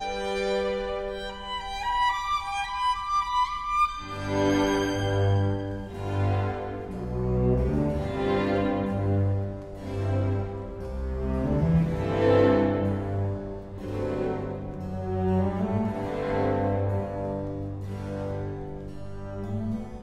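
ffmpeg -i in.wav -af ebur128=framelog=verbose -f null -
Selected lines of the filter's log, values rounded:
Integrated loudness:
  I:         -27.6 LUFS
  Threshold: -37.7 LUFS
Loudness range:
  LRA:         4.1 LU
  Threshold: -47.4 LUFS
  LRA low:   -29.7 LUFS
  LRA high:  -25.6 LUFS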